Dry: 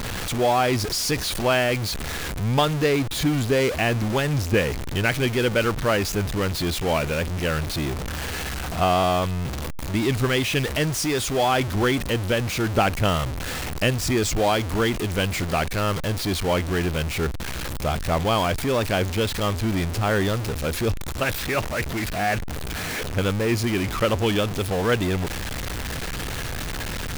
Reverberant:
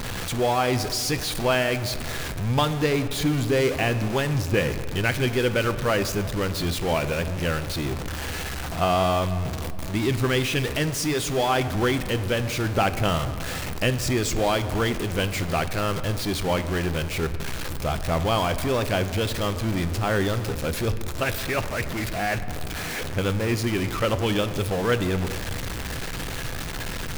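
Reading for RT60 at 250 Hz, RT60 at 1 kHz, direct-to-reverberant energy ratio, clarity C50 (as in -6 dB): 2.7 s, 2.1 s, 9.5 dB, 12.5 dB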